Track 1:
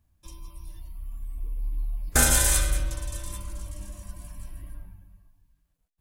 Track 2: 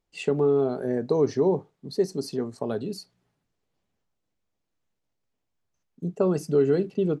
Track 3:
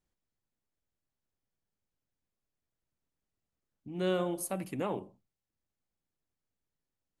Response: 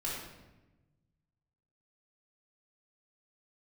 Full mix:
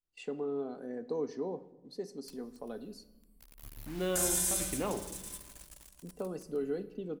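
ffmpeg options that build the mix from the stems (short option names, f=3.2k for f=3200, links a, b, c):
-filter_complex "[0:a]bass=f=250:g=-9,treble=f=4k:g=11,adelay=2000,volume=-15dB,asplit=2[a][b];[b]volume=-12dB[c];[1:a]highpass=170,aecho=1:1:4:0.44,agate=range=-17dB:threshold=-43dB:ratio=16:detection=peak,volume=-14.5dB,asplit=2[d][e];[e]volume=-16dB[f];[2:a]volume=-2dB,asplit=2[g][h];[h]volume=-12dB[i];[a][g]amix=inputs=2:normalize=0,acrusher=bits=7:mix=0:aa=0.000001,alimiter=limit=-23.5dB:level=0:latency=1:release=51,volume=0dB[j];[3:a]atrim=start_sample=2205[k];[c][f][i]amix=inputs=3:normalize=0[l];[l][k]afir=irnorm=-1:irlink=0[m];[d][j][m]amix=inputs=3:normalize=0"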